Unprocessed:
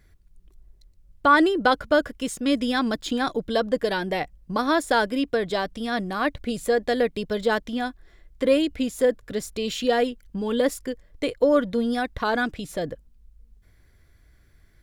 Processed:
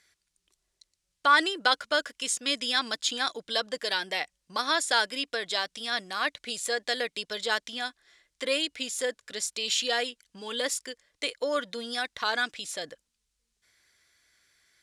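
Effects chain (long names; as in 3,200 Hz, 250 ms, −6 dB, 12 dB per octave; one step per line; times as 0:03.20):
meter weighting curve ITU-R 468
level −5 dB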